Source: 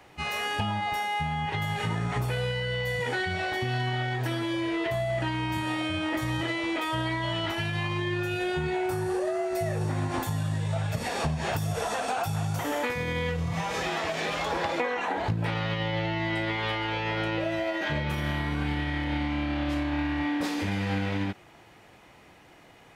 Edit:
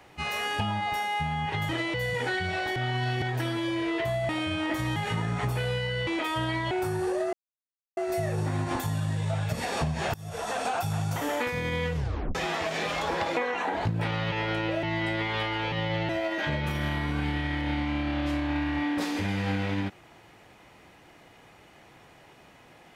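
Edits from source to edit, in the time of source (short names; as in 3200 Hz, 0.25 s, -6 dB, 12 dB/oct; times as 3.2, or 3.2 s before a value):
1.69–2.8 swap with 6.39–6.64
3.62–4.08 reverse
5.15–5.72 cut
7.28–8.78 cut
9.4 insert silence 0.64 s
11.57–12.01 fade in, from -20.5 dB
13.38 tape stop 0.40 s
15.75–16.12 swap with 17.01–17.52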